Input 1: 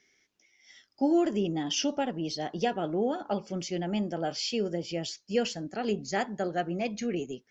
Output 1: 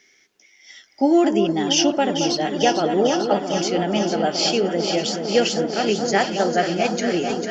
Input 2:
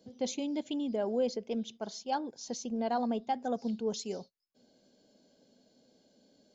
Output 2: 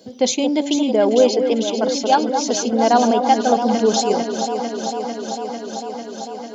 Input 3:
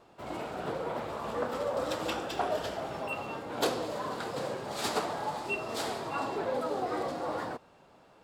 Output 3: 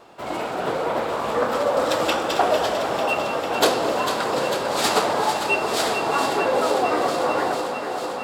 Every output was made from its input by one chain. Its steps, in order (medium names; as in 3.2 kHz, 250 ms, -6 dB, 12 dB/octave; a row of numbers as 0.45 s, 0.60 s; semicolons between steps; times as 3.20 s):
bass shelf 220 Hz -9.5 dB; on a send: echo whose repeats swap between lows and highs 224 ms, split 1.3 kHz, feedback 89%, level -7 dB; on the sum: peak normalisation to -3 dBFS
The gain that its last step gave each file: +11.0 dB, +18.0 dB, +12.0 dB